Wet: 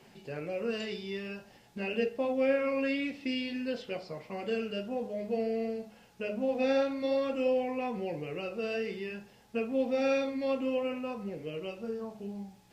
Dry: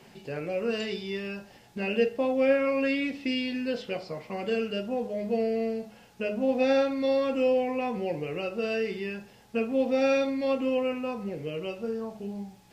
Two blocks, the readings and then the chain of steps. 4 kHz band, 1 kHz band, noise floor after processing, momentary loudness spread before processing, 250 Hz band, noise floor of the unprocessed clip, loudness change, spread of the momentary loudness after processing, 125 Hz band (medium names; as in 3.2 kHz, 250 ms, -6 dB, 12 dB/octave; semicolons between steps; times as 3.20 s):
-4.5 dB, -4.5 dB, -59 dBFS, 12 LU, -4.5 dB, -55 dBFS, -4.5 dB, 12 LU, -4.5 dB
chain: flange 0.52 Hz, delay 2.3 ms, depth 9.6 ms, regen -76%